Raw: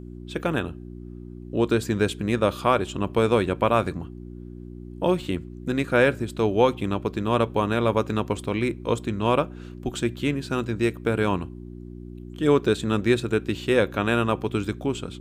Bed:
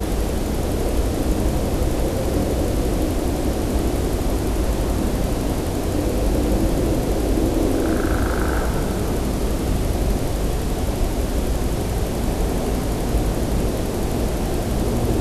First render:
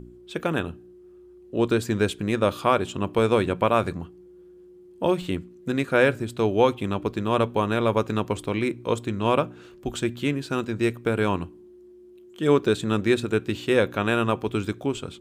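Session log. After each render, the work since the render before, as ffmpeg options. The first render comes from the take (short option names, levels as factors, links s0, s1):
-af "bandreject=f=60:t=h:w=4,bandreject=f=120:t=h:w=4,bandreject=f=180:t=h:w=4,bandreject=f=240:t=h:w=4,bandreject=f=300:t=h:w=4"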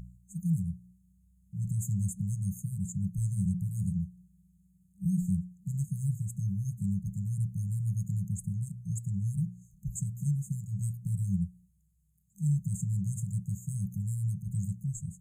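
-af "afftfilt=real='re*(1-between(b*sr/4096,200,6300))':imag='im*(1-between(b*sr/4096,200,6300))':win_size=4096:overlap=0.75,adynamicequalizer=threshold=0.00447:dfrequency=170:dqfactor=2.4:tfrequency=170:tqfactor=2.4:attack=5:release=100:ratio=0.375:range=2.5:mode=boostabove:tftype=bell"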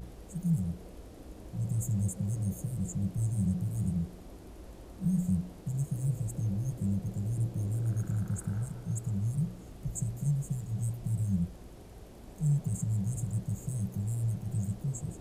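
-filter_complex "[1:a]volume=0.0422[s0];[0:a][s0]amix=inputs=2:normalize=0"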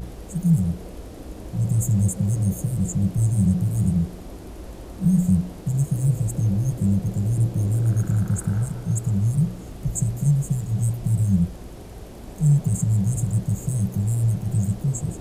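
-af "volume=3.35"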